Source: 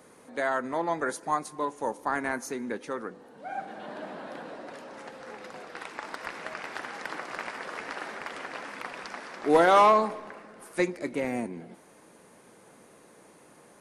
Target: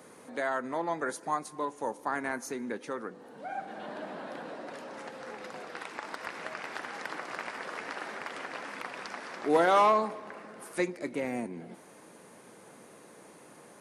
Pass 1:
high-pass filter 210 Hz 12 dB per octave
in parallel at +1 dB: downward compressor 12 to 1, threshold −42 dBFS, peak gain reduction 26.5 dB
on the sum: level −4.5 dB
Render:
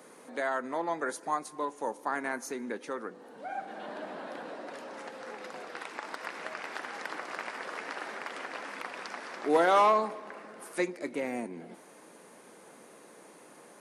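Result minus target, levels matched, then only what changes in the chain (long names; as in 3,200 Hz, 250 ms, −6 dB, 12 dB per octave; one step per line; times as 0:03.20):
125 Hz band −5.0 dB
change: high-pass filter 90 Hz 12 dB per octave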